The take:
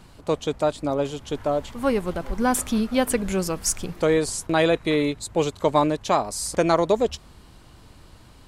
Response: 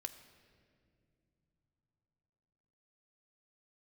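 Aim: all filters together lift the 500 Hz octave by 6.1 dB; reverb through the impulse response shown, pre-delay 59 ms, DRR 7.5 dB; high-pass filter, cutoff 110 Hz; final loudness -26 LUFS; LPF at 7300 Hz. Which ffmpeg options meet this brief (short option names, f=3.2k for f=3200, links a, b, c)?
-filter_complex "[0:a]highpass=110,lowpass=7.3k,equalizer=f=500:t=o:g=7,asplit=2[a][b];[1:a]atrim=start_sample=2205,adelay=59[c];[b][c]afir=irnorm=-1:irlink=0,volume=-4.5dB[d];[a][d]amix=inputs=2:normalize=0,volume=-7dB"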